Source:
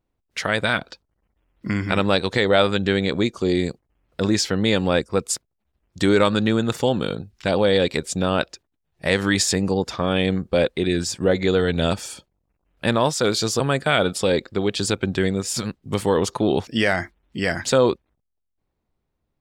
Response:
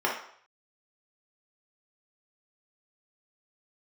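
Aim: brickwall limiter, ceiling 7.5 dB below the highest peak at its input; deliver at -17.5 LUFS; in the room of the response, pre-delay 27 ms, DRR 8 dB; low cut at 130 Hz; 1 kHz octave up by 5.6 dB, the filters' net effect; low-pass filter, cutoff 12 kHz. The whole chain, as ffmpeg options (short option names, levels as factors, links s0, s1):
-filter_complex "[0:a]highpass=130,lowpass=12000,equalizer=f=1000:t=o:g=7.5,alimiter=limit=0.473:level=0:latency=1,asplit=2[s0][s1];[1:a]atrim=start_sample=2205,adelay=27[s2];[s1][s2]afir=irnorm=-1:irlink=0,volume=0.0944[s3];[s0][s3]amix=inputs=2:normalize=0,volume=1.5"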